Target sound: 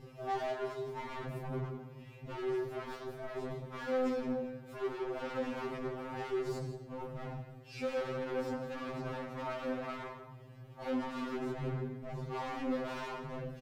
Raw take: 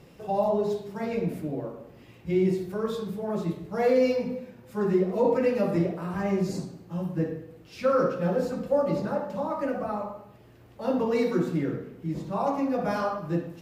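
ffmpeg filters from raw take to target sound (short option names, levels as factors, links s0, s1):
-filter_complex "[0:a]alimiter=limit=0.106:level=0:latency=1:release=12,equalizer=f=77:t=o:w=0.88:g=14.5,asplit=2[s0][s1];[s1]adelay=13,volume=0.531[s2];[s0][s2]amix=inputs=2:normalize=0,volume=53.1,asoftclip=hard,volume=0.0188,asplit=2[s3][s4];[s4]aecho=0:1:168:0.224[s5];[s3][s5]amix=inputs=2:normalize=0,asplit=2[s6][s7];[s7]asetrate=66075,aresample=44100,atempo=0.66742,volume=0.178[s8];[s6][s8]amix=inputs=2:normalize=0,highshelf=f=4200:g=-7.5,afftfilt=real='re*2.45*eq(mod(b,6),0)':imag='im*2.45*eq(mod(b,6),0)':win_size=2048:overlap=0.75"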